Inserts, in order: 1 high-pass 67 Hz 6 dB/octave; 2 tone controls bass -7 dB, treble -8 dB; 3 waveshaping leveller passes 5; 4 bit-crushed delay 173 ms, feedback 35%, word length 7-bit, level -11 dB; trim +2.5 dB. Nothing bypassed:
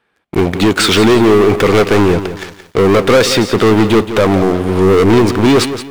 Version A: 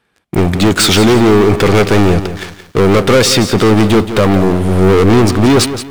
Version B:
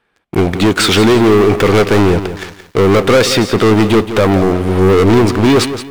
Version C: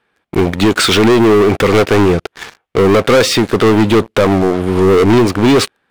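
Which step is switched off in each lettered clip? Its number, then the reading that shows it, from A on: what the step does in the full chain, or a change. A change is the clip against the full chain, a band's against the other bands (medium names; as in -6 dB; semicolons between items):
2, 8 kHz band +4.0 dB; 1, 125 Hz band +2.0 dB; 4, crest factor change -2.0 dB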